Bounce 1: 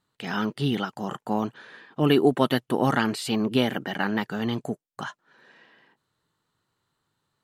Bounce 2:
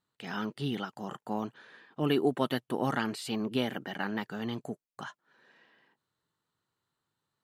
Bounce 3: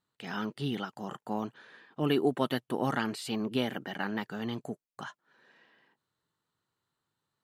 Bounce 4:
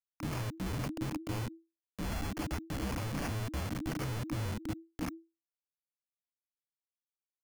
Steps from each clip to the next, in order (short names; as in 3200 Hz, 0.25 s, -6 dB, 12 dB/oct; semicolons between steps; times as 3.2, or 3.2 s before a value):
low shelf 60 Hz -6.5 dB; gain -7.5 dB
nothing audible
Schmitt trigger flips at -37 dBFS; sample-rate reducer 4100 Hz, jitter 0%; frequency shift -330 Hz